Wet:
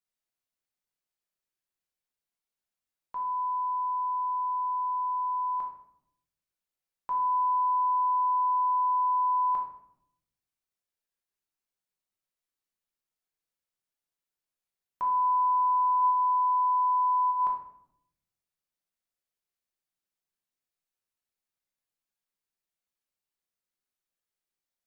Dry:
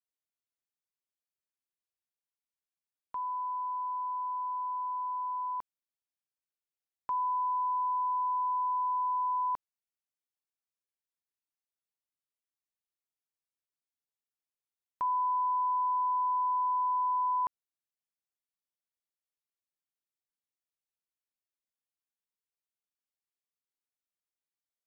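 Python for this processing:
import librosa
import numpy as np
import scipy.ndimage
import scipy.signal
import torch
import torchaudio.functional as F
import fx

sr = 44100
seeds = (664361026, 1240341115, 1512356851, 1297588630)

y = fx.highpass(x, sr, hz=540.0, slope=12, at=(16.01, 17.3), fade=0.02)
y = fx.room_shoebox(y, sr, seeds[0], volume_m3=170.0, walls='mixed', distance_m=1.0)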